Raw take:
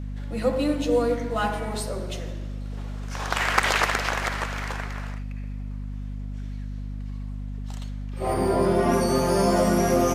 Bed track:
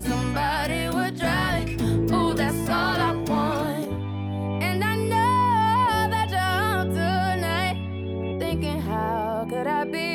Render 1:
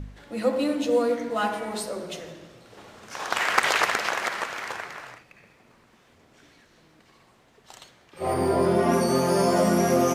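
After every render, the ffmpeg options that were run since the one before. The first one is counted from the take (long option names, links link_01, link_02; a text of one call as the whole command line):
ffmpeg -i in.wav -af "bandreject=frequency=50:width_type=h:width=4,bandreject=frequency=100:width_type=h:width=4,bandreject=frequency=150:width_type=h:width=4,bandreject=frequency=200:width_type=h:width=4,bandreject=frequency=250:width_type=h:width=4,bandreject=frequency=300:width_type=h:width=4" out.wav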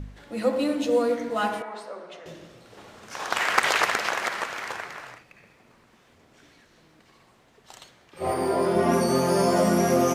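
ffmpeg -i in.wav -filter_complex "[0:a]asettb=1/sr,asplit=3[link_01][link_02][link_03];[link_01]atrim=end=1.624[link_04];[link_02]atrim=start=1.62:end=2.26,asetpts=PTS-STARTPTS,afade=type=in:duration=0.004:curve=qsin,afade=type=out:start_time=0.636:duration=0.004:curve=qsin,bandpass=frequency=1100:width_type=q:width=1[link_05];[link_03]atrim=start=2.256[link_06];[link_04][link_05]acrossfade=duration=0.004:curve1=hsin:curve2=qsin[link_07];[link_07][link_06]acrossfade=duration=0.004:curve1=qsin:curve2=hsin,asettb=1/sr,asplit=3[link_08][link_09][link_10];[link_08]atrim=end=8.314[link_11];[link_09]atrim=start=8.31:end=8.76,asetpts=PTS-STARTPTS,afade=type=in:duration=0.004:curve=qsin,afade=type=out:start_time=0.446:duration=0.004:curve=qsin,highpass=frequency=270:poles=1[link_12];[link_10]atrim=start=8.756[link_13];[link_11][link_12]acrossfade=duration=0.004:curve1=hsin:curve2=qsin[link_14];[link_14][link_13]acrossfade=duration=0.004:curve1=qsin:curve2=hsin" out.wav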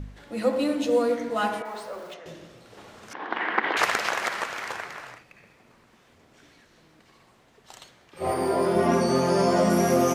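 ffmpeg -i in.wav -filter_complex "[0:a]asettb=1/sr,asplit=3[link_01][link_02][link_03];[link_01]atrim=end=1.654[link_04];[link_02]atrim=start=1.65:end=2.14,asetpts=PTS-STARTPTS,afade=type=in:duration=0.004:curve=qsin,afade=type=out:start_time=0.486:duration=0.004:curve=qsin,aeval=exprs='val(0)+0.5*0.00631*sgn(val(0))':channel_layout=same[link_05];[link_03]atrim=start=2.136[link_06];[link_04][link_05]acrossfade=duration=0.004:curve1=hsin:curve2=qsin[link_07];[link_07][link_06]acrossfade=duration=0.004:curve1=qsin:curve2=hsin,asettb=1/sr,asplit=3[link_08][link_09][link_10];[link_08]atrim=end=3.134[link_11];[link_09]atrim=start=3.13:end=3.77,asetpts=PTS-STARTPTS,afade=type=in:duration=0.004:curve=qsin,afade=type=out:start_time=0.636:duration=0.004:curve=qsin,highpass=frequency=190:width=0.5412,highpass=frequency=190:width=1.3066,equalizer=frequency=210:width_type=q:width=4:gain=4,equalizer=frequency=310:width_type=q:width=4:gain=9,equalizer=frequency=590:width_type=q:width=4:gain=-6,equalizer=frequency=1300:width_type=q:width=4:gain=-6,equalizer=frequency=2500:width_type=q:width=4:gain=-8,lowpass=frequency=2700:width=0.5412,lowpass=frequency=2700:width=1.3066[link_12];[link_10]atrim=start=3.766[link_13];[link_11][link_12]acrossfade=duration=0.004:curve1=hsin:curve2=qsin[link_14];[link_14][link_13]acrossfade=duration=0.004:curve1=qsin:curve2=hsin,asettb=1/sr,asplit=3[link_15][link_16][link_17];[link_15]atrim=end=8.874[link_18];[link_16]atrim=start=8.87:end=9.7,asetpts=PTS-STARTPTS,afade=type=in:duration=0.004:curve=qsin,afade=type=out:start_time=0.826:duration=0.004:curve=qsin,acrossover=split=7900[link_19][link_20];[link_20]acompressor=threshold=-54dB:ratio=4:attack=1:release=60[link_21];[link_19][link_21]amix=inputs=2:normalize=0[link_22];[link_17]atrim=start=9.696[link_23];[link_18][link_22]acrossfade=duration=0.004:curve1=hsin:curve2=qsin[link_24];[link_24][link_23]acrossfade=duration=0.004:curve1=qsin:curve2=hsin" out.wav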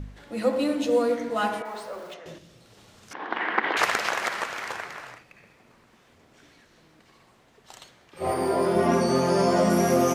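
ffmpeg -i in.wav -filter_complex "[0:a]asettb=1/sr,asplit=3[link_01][link_02][link_03];[link_01]atrim=end=2.384[link_04];[link_02]atrim=start=2.38:end=3.11,asetpts=PTS-STARTPTS,afade=type=in:duration=0.004:curve=qsin,afade=type=out:start_time=0.726:duration=0.004:curve=qsin,acrossover=split=190|3000[link_05][link_06][link_07];[link_06]acompressor=threshold=-56dB:ratio=4:attack=3.2:release=140:knee=2.83:detection=peak[link_08];[link_05][link_08][link_07]amix=inputs=3:normalize=0[link_09];[link_03]atrim=start=3.106[link_10];[link_04][link_09]acrossfade=duration=0.004:curve1=hsin:curve2=qsin[link_11];[link_11][link_10]acrossfade=duration=0.004:curve1=qsin:curve2=hsin" out.wav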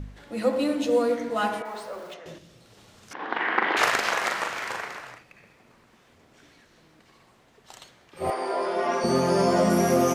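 ffmpeg -i in.wav -filter_complex "[0:a]asettb=1/sr,asplit=3[link_01][link_02][link_03];[link_01]atrim=end=3.154[link_04];[link_02]atrim=start=3.15:end=4.98,asetpts=PTS-STARTPTS,afade=type=in:duration=0.004:curve=qsin,afade=type=out:start_time=1.826:duration=0.004:curve=qsin,asplit=2[link_05][link_06];[link_06]adelay=41,volume=-4dB[link_07];[link_05][link_07]amix=inputs=2:normalize=0,atrim=end_sample=80703[link_08];[link_03]atrim=start=4.976[link_09];[link_04][link_08]acrossfade=duration=0.004:curve1=hsin:curve2=qsin[link_10];[link_10][link_09]acrossfade=duration=0.004:curve1=qsin:curve2=hsin,asettb=1/sr,asplit=3[link_11][link_12][link_13];[link_11]atrim=end=8.304[link_14];[link_12]atrim=start=8.3:end=9.04,asetpts=PTS-STARTPTS,afade=type=in:duration=0.004:curve=qsin,afade=type=out:start_time=0.736:duration=0.004:curve=qsin,highpass=520,lowpass=6200[link_15];[link_13]atrim=start=9.036[link_16];[link_14][link_15]acrossfade=duration=0.004:curve1=hsin:curve2=qsin[link_17];[link_17][link_16]acrossfade=duration=0.004:curve1=qsin:curve2=hsin" out.wav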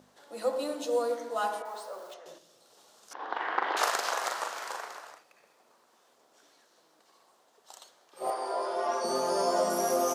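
ffmpeg -i in.wav -af "highpass=600,equalizer=frequency=2200:width_type=o:width=1.2:gain=-13" out.wav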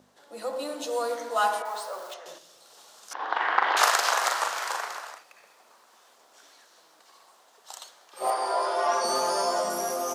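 ffmpeg -i in.wav -filter_complex "[0:a]acrossover=split=660[link_01][link_02];[link_01]alimiter=level_in=6.5dB:limit=-24dB:level=0:latency=1:release=29,volume=-6.5dB[link_03];[link_02]dynaudnorm=framelen=170:gausssize=11:maxgain=8.5dB[link_04];[link_03][link_04]amix=inputs=2:normalize=0" out.wav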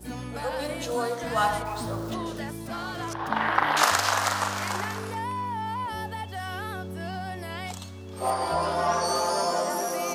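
ffmpeg -i in.wav -i bed.wav -filter_complex "[1:a]volume=-11dB[link_01];[0:a][link_01]amix=inputs=2:normalize=0" out.wav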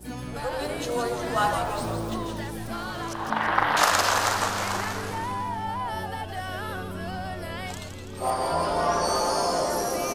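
ffmpeg -i in.wav -filter_complex "[0:a]asplit=8[link_01][link_02][link_03][link_04][link_05][link_06][link_07][link_08];[link_02]adelay=166,afreqshift=-110,volume=-7dB[link_09];[link_03]adelay=332,afreqshift=-220,volume=-11.7dB[link_10];[link_04]adelay=498,afreqshift=-330,volume=-16.5dB[link_11];[link_05]adelay=664,afreqshift=-440,volume=-21.2dB[link_12];[link_06]adelay=830,afreqshift=-550,volume=-25.9dB[link_13];[link_07]adelay=996,afreqshift=-660,volume=-30.7dB[link_14];[link_08]adelay=1162,afreqshift=-770,volume=-35.4dB[link_15];[link_01][link_09][link_10][link_11][link_12][link_13][link_14][link_15]amix=inputs=8:normalize=0" out.wav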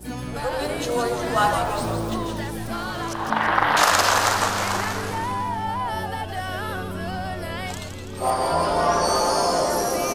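ffmpeg -i in.wav -af "volume=4dB,alimiter=limit=-3dB:level=0:latency=1" out.wav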